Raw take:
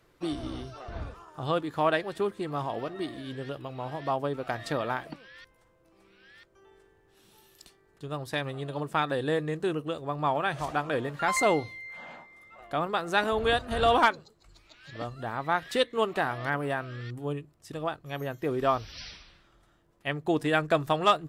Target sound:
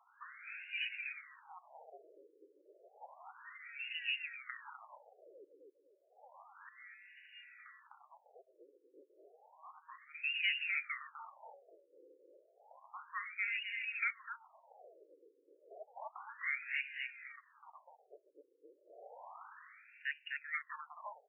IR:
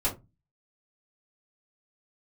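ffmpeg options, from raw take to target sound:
-filter_complex "[0:a]asubboost=boost=6.5:cutoff=210,acompressor=threshold=-38dB:ratio=6,asplit=2[link_01][link_02];[link_02]aecho=0:1:253|506|759|1012:0.708|0.219|0.068|0.0211[link_03];[link_01][link_03]amix=inputs=2:normalize=0,asoftclip=type=tanh:threshold=-28dB,lowpass=frequency=3100:width_type=q:width=0.5098,lowpass=frequency=3100:width_type=q:width=0.6013,lowpass=frequency=3100:width_type=q:width=0.9,lowpass=frequency=3100:width_type=q:width=2.563,afreqshift=-3700,afftfilt=real='re*between(b*sr/1024,390*pow(2100/390,0.5+0.5*sin(2*PI*0.31*pts/sr))/1.41,390*pow(2100/390,0.5+0.5*sin(2*PI*0.31*pts/sr))*1.41)':imag='im*between(b*sr/1024,390*pow(2100/390,0.5+0.5*sin(2*PI*0.31*pts/sr))/1.41,390*pow(2100/390,0.5+0.5*sin(2*PI*0.31*pts/sr))*1.41)':win_size=1024:overlap=0.75,volume=11dB"

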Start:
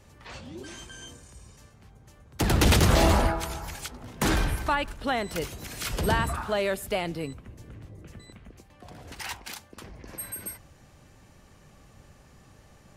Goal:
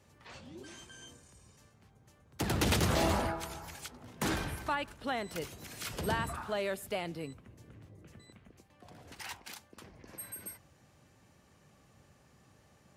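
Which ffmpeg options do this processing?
ffmpeg -i in.wav -af "highpass=84,volume=-7.5dB" out.wav

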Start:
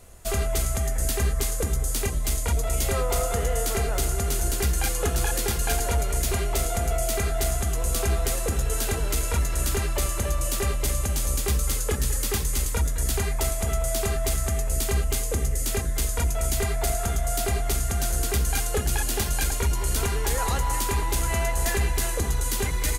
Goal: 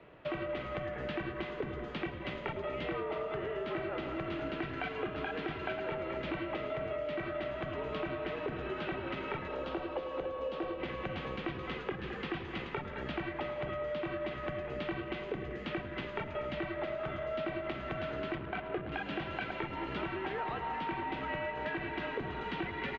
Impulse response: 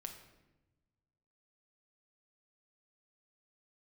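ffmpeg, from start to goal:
-filter_complex "[0:a]aecho=1:1:168:0.141,asettb=1/sr,asplit=3[link_01][link_02][link_03];[link_01]atrim=end=18.354[link_04];[link_02]atrim=start=18.35:end=18.92,asetpts=PTS-STARTPTS,afade=type=in:duration=0.004:curve=qsin,afade=type=out:start_time=0.566:duration=0.004:curve=qsin,adynamicsmooth=sensitivity=4.5:basefreq=560[link_05];[link_03]atrim=start=18.916[link_06];[link_04][link_05]acrossfade=duration=0.004:curve1=hsin:curve2=qsin[link_07];[link_07][link_06]acrossfade=duration=0.004:curve1=qsin:curve2=hsin,highpass=frequency=160:width_type=q:width=0.5412,highpass=frequency=160:width_type=q:width=1.307,lowpass=frequency=3100:width_type=q:width=0.5176,lowpass=frequency=3100:width_type=q:width=0.7071,lowpass=frequency=3100:width_type=q:width=1.932,afreqshift=-62,asettb=1/sr,asplit=3[link_08][link_09][link_10];[link_08]atrim=end=9.484[link_11];[link_09]atrim=start=9.48:end=10.8,asetpts=PTS-STARTPTS,afade=type=in:duration=0.004:curve=qsin,afade=type=out:start_time=1.316:duration=0.004:curve=qsin,equalizer=frequency=125:width_type=o:width=1:gain=-10,equalizer=frequency=250:width_type=o:width=1:gain=-4,equalizer=frequency=500:width_type=o:width=1:gain=7,equalizer=frequency=2000:width_type=o:width=1:gain=-9[link_12];[link_10]atrim=start=10.796[link_13];[link_11][link_12]acrossfade=duration=0.004:curve1=hsin:curve2=qsin[link_14];[link_14][link_13]acrossfade=duration=0.004:curve1=qsin:curve2=hsin,acompressor=threshold=-34dB:ratio=6,asplit=2[link_15][link_16];[1:a]atrim=start_sample=2205,adelay=104[link_17];[link_16][link_17]afir=irnorm=-1:irlink=0,volume=-10.5dB[link_18];[link_15][link_18]amix=inputs=2:normalize=0"

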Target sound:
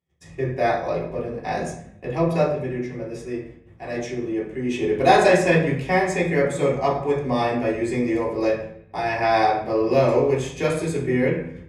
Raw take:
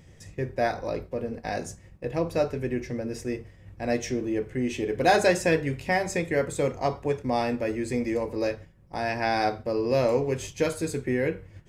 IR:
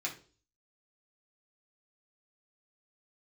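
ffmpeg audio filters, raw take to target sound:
-filter_complex "[0:a]agate=range=-33dB:threshold=-47dB:ratio=16:detection=peak,asplit=3[link_01][link_02][link_03];[link_01]afade=type=out:start_time=2.46:duration=0.02[link_04];[link_02]flanger=delay=5.4:depth=7.9:regen=74:speed=1:shape=sinusoidal,afade=type=in:start_time=2.46:duration=0.02,afade=type=out:start_time=4.7:duration=0.02[link_05];[link_03]afade=type=in:start_time=4.7:duration=0.02[link_06];[link_04][link_05][link_06]amix=inputs=3:normalize=0[link_07];[1:a]atrim=start_sample=2205,asetrate=22050,aresample=44100[link_08];[link_07][link_08]afir=irnorm=-1:irlink=0,volume=-1.5dB"

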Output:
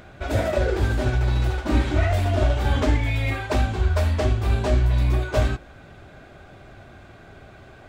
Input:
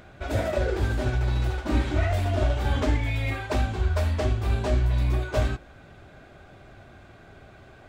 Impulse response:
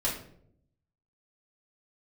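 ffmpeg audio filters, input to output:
-af "volume=3.5dB"

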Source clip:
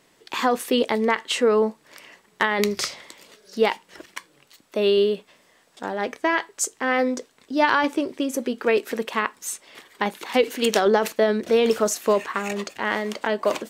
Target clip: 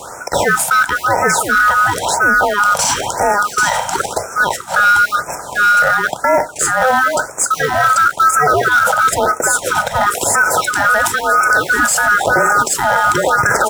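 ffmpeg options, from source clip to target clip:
ffmpeg -i in.wav -filter_complex "[0:a]afftfilt=real='real(if(lt(b,960),b+48*(1-2*mod(floor(b/48),2)),b),0)':imag='imag(if(lt(b,960),b+48*(1-2*mod(floor(b/48),2)),b),0)':win_size=2048:overlap=0.75,equalizer=frequency=125:width_type=o:width=1:gain=3,equalizer=frequency=250:width_type=o:width=1:gain=-4,equalizer=frequency=500:width_type=o:width=1:gain=8,equalizer=frequency=1000:width_type=o:width=1:gain=5,equalizer=frequency=2000:width_type=o:width=1:gain=-9,equalizer=frequency=4000:width_type=o:width=1:gain=-8,equalizer=frequency=8000:width_type=o:width=1:gain=10,areverse,acompressor=threshold=-32dB:ratio=12,areverse,acrusher=bits=3:mode=log:mix=0:aa=0.000001,highshelf=frequency=4600:gain=-8,asplit=2[link_01][link_02];[link_02]aecho=0:1:789:0.596[link_03];[link_01][link_03]amix=inputs=2:normalize=0,acrossover=split=230[link_04][link_05];[link_04]acompressor=threshold=-51dB:ratio=3[link_06];[link_06][link_05]amix=inputs=2:normalize=0,highpass=frequency=98:poles=1,alimiter=level_in=33dB:limit=-1dB:release=50:level=0:latency=1,afftfilt=real='re*(1-between(b*sr/1024,310*pow(3800/310,0.5+0.5*sin(2*PI*0.98*pts/sr))/1.41,310*pow(3800/310,0.5+0.5*sin(2*PI*0.98*pts/sr))*1.41))':imag='im*(1-between(b*sr/1024,310*pow(3800/310,0.5+0.5*sin(2*PI*0.98*pts/sr))/1.41,310*pow(3800/310,0.5+0.5*sin(2*PI*0.98*pts/sr))*1.41))':win_size=1024:overlap=0.75,volume=-3dB" out.wav

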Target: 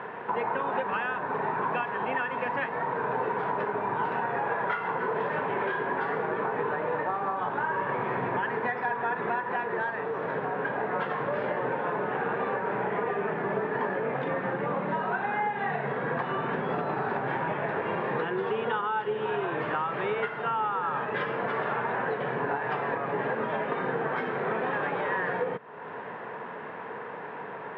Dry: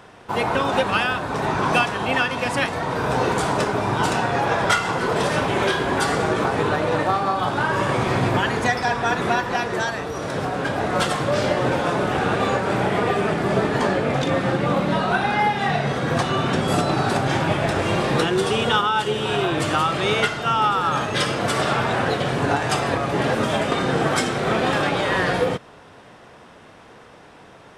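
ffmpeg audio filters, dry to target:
ffmpeg -i in.wav -af "highpass=frequency=140:width=0.5412,highpass=frequency=140:width=1.3066,equalizer=frequency=310:width_type=q:width=4:gain=-4,equalizer=frequency=440:width_type=q:width=4:gain=8,equalizer=frequency=950:width_type=q:width=4:gain=9,equalizer=frequency=1700:width_type=q:width=4:gain=7,lowpass=frequency=2500:width=0.5412,lowpass=frequency=2500:width=1.3066,acompressor=threshold=-37dB:ratio=3,volume=4dB" out.wav

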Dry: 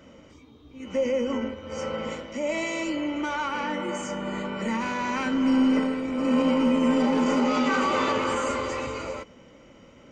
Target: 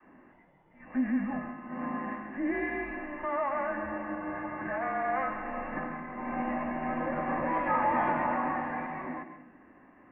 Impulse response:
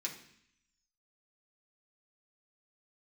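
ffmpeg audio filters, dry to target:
-filter_complex "[0:a]adynamicequalizer=threshold=0.0178:dfrequency=460:dqfactor=0.81:tfrequency=460:tqfactor=0.81:attack=5:release=100:ratio=0.375:range=2:mode=cutabove:tftype=bell,highpass=frequency=530:width_type=q:width=0.5412,highpass=frequency=530:width_type=q:width=1.307,lowpass=frequency=2200:width_type=q:width=0.5176,lowpass=frequency=2200:width_type=q:width=0.7071,lowpass=frequency=2200:width_type=q:width=1.932,afreqshift=-280,asplit=2[link_01][link_02];[1:a]atrim=start_sample=2205,adelay=128[link_03];[link_02][link_03]afir=irnorm=-1:irlink=0,volume=-8.5dB[link_04];[link_01][link_04]amix=inputs=2:normalize=0"

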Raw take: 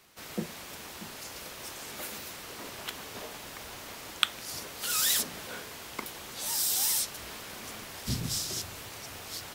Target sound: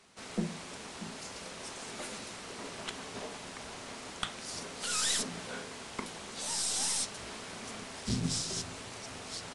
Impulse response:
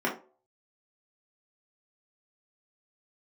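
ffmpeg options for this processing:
-filter_complex "[0:a]aeval=exprs='(tanh(12.6*val(0)+0.45)-tanh(0.45))/12.6':channel_layout=same,asplit=2[link_01][link_02];[link_02]lowshelf=frequency=410:gain=7[link_03];[1:a]atrim=start_sample=2205,asetrate=30429,aresample=44100[link_04];[link_03][link_04]afir=irnorm=-1:irlink=0,volume=-23.5dB[link_05];[link_01][link_05]amix=inputs=2:normalize=0,aresample=22050,aresample=44100"

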